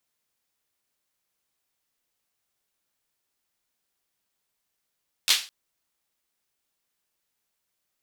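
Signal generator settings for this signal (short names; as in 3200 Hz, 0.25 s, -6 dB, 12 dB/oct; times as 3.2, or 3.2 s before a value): hand clap length 0.21 s, bursts 3, apart 11 ms, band 3600 Hz, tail 0.33 s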